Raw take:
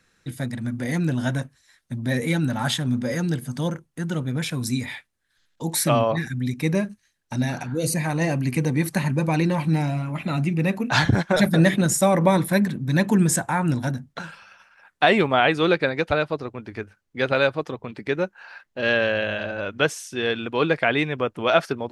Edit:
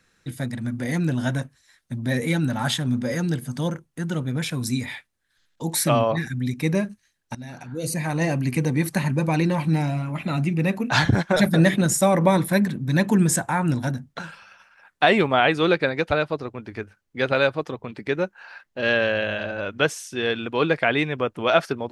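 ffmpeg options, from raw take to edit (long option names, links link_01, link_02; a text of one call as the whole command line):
ffmpeg -i in.wav -filter_complex "[0:a]asplit=2[link_01][link_02];[link_01]atrim=end=7.35,asetpts=PTS-STARTPTS,afade=type=out:start_time=7.346:duration=0.004:curve=hsin:silence=0.112202[link_03];[link_02]atrim=start=7.35,asetpts=PTS-STARTPTS,afade=type=in:duration=0.84:silence=0.112202[link_04];[link_03][link_04]concat=n=2:v=0:a=1" out.wav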